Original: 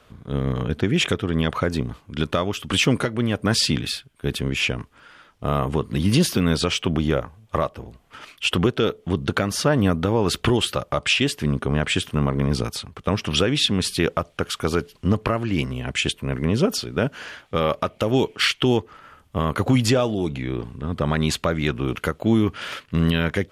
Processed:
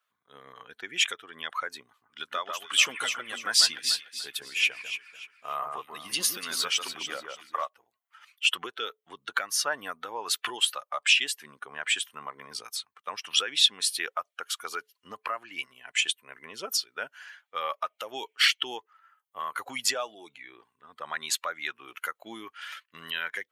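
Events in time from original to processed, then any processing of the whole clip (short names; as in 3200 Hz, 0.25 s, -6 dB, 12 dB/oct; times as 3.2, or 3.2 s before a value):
1.87–7.68 echo with dull and thin repeats by turns 0.146 s, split 1900 Hz, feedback 68%, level -3 dB
whole clip: per-bin expansion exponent 1.5; HPF 1200 Hz 12 dB/oct; high shelf 6200 Hz +4.5 dB; gain +1 dB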